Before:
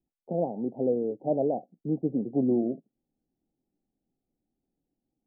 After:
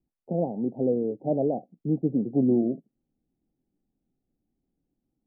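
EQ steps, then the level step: air absorption 490 m; low shelf 320 Hz +6.5 dB; 0.0 dB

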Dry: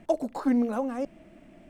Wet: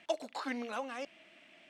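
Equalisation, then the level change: band-pass 3200 Hz, Q 1.5; +9.0 dB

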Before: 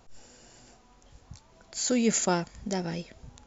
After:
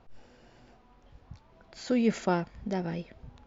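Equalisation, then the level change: air absorption 250 m; 0.0 dB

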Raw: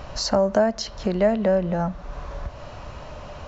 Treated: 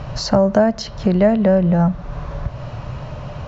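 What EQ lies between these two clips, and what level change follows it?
air absorption 64 m; bell 130 Hz +13.5 dB 0.92 oct; +4.0 dB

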